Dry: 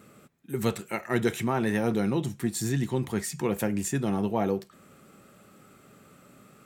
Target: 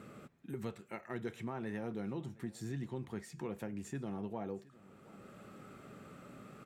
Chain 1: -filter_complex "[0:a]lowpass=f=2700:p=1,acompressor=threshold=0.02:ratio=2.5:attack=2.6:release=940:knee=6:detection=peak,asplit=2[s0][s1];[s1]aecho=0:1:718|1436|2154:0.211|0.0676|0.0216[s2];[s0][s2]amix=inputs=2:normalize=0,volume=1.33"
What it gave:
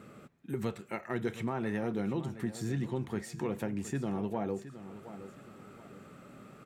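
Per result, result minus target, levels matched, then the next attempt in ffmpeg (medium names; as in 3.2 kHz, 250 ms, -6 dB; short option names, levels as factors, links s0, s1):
compression: peak gain reduction -7 dB; echo-to-direct +8.5 dB
-filter_complex "[0:a]lowpass=f=2700:p=1,acompressor=threshold=0.00531:ratio=2.5:attack=2.6:release=940:knee=6:detection=peak,asplit=2[s0][s1];[s1]aecho=0:1:718|1436|2154:0.211|0.0676|0.0216[s2];[s0][s2]amix=inputs=2:normalize=0,volume=1.33"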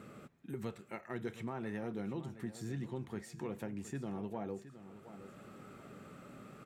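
echo-to-direct +8.5 dB
-filter_complex "[0:a]lowpass=f=2700:p=1,acompressor=threshold=0.00531:ratio=2.5:attack=2.6:release=940:knee=6:detection=peak,asplit=2[s0][s1];[s1]aecho=0:1:718|1436:0.0794|0.0254[s2];[s0][s2]amix=inputs=2:normalize=0,volume=1.33"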